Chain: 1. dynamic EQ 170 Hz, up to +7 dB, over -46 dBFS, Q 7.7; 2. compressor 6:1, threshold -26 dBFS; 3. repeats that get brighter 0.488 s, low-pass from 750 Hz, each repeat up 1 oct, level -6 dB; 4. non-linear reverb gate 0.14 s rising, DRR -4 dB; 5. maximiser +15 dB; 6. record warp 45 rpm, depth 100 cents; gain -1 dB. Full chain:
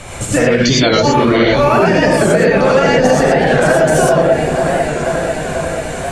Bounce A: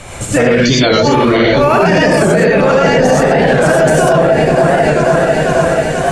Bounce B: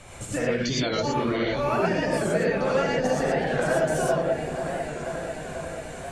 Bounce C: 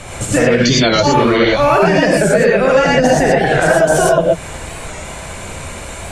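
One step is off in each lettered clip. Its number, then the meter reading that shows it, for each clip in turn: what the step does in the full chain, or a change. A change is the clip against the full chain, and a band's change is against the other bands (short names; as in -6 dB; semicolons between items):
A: 2, mean gain reduction 4.5 dB; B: 5, crest factor change +4.5 dB; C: 3, momentary loudness spread change +9 LU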